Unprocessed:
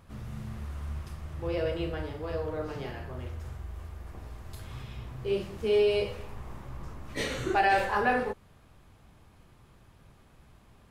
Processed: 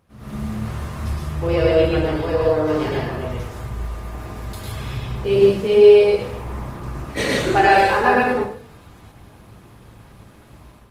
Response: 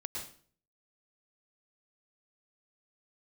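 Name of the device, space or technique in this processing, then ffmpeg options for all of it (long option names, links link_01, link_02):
far-field microphone of a smart speaker: -filter_complex "[1:a]atrim=start_sample=2205[link_01];[0:a][link_01]afir=irnorm=-1:irlink=0,highpass=frequency=89:poles=1,dynaudnorm=framelen=100:gausssize=5:maxgain=14.5dB" -ar 48000 -c:a libopus -b:a 20k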